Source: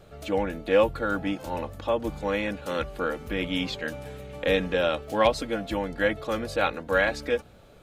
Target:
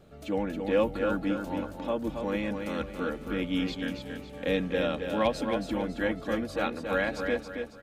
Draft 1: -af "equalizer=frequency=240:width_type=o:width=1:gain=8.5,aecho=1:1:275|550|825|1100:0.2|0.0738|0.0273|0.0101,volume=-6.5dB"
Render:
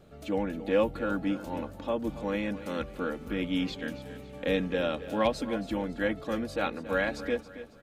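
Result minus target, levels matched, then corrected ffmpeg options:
echo-to-direct −8 dB
-af "equalizer=frequency=240:width_type=o:width=1:gain=8.5,aecho=1:1:275|550|825|1100:0.501|0.185|0.0686|0.0254,volume=-6.5dB"

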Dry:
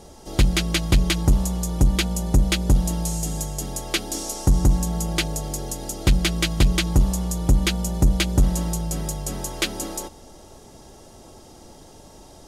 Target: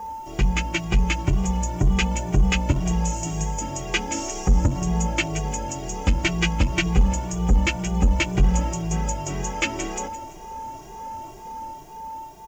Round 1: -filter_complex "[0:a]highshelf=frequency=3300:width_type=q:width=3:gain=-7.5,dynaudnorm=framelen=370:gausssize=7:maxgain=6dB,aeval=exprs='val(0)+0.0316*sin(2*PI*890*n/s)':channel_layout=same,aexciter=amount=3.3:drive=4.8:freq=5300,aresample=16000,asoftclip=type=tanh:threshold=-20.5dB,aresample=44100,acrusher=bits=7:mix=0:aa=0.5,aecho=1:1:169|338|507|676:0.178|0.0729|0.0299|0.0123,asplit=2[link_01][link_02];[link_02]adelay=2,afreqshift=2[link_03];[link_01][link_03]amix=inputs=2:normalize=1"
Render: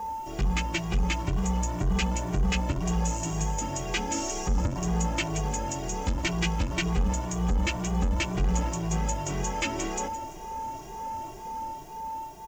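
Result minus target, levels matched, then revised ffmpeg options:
soft clipping: distortion +9 dB
-filter_complex "[0:a]highshelf=frequency=3300:width_type=q:width=3:gain=-7.5,dynaudnorm=framelen=370:gausssize=7:maxgain=6dB,aeval=exprs='val(0)+0.0316*sin(2*PI*890*n/s)':channel_layout=same,aexciter=amount=3.3:drive=4.8:freq=5300,aresample=16000,asoftclip=type=tanh:threshold=-10dB,aresample=44100,acrusher=bits=7:mix=0:aa=0.5,aecho=1:1:169|338|507|676:0.178|0.0729|0.0299|0.0123,asplit=2[link_01][link_02];[link_02]adelay=2,afreqshift=2[link_03];[link_01][link_03]amix=inputs=2:normalize=1"

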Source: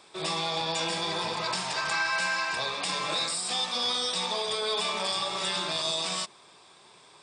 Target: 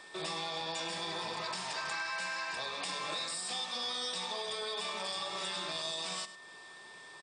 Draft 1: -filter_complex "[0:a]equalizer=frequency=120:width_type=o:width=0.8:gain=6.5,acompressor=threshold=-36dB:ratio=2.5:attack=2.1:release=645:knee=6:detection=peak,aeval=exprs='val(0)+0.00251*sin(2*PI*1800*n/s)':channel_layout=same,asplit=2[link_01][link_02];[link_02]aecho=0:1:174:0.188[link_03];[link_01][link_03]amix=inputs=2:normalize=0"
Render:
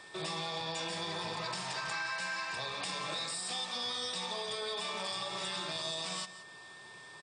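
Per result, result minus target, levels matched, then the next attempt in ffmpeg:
echo 73 ms late; 125 Hz band +5.0 dB
-filter_complex "[0:a]equalizer=frequency=120:width_type=o:width=0.8:gain=6.5,acompressor=threshold=-36dB:ratio=2.5:attack=2.1:release=645:knee=6:detection=peak,aeval=exprs='val(0)+0.00251*sin(2*PI*1800*n/s)':channel_layout=same,asplit=2[link_01][link_02];[link_02]aecho=0:1:101:0.188[link_03];[link_01][link_03]amix=inputs=2:normalize=0"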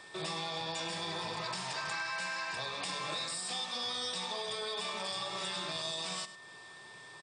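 125 Hz band +5.0 dB
-filter_complex "[0:a]equalizer=frequency=120:width_type=o:width=0.8:gain=-4,acompressor=threshold=-36dB:ratio=2.5:attack=2.1:release=645:knee=6:detection=peak,aeval=exprs='val(0)+0.00251*sin(2*PI*1800*n/s)':channel_layout=same,asplit=2[link_01][link_02];[link_02]aecho=0:1:101:0.188[link_03];[link_01][link_03]amix=inputs=2:normalize=0"

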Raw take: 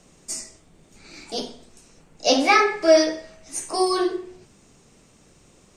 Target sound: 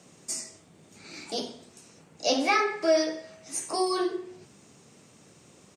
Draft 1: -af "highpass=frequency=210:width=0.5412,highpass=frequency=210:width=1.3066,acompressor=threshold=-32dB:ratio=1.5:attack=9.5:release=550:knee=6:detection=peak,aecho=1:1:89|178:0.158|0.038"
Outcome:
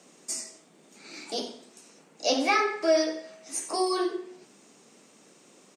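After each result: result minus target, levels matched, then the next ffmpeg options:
125 Hz band −8.0 dB; echo-to-direct +8.5 dB
-af "highpass=frequency=94:width=0.5412,highpass=frequency=94:width=1.3066,acompressor=threshold=-32dB:ratio=1.5:attack=9.5:release=550:knee=6:detection=peak,aecho=1:1:89|178:0.158|0.038"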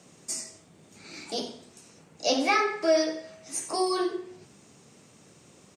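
echo-to-direct +8.5 dB
-af "highpass=frequency=94:width=0.5412,highpass=frequency=94:width=1.3066,acompressor=threshold=-32dB:ratio=1.5:attack=9.5:release=550:knee=6:detection=peak,aecho=1:1:89|178:0.0596|0.0143"

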